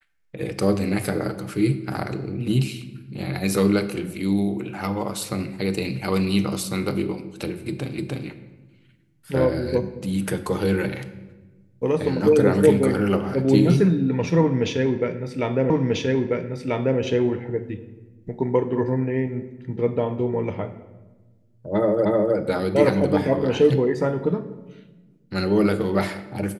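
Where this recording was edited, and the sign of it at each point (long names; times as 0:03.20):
0:07.98: the same again, the last 0.3 s
0:15.70: the same again, the last 1.29 s
0:22.05: the same again, the last 0.31 s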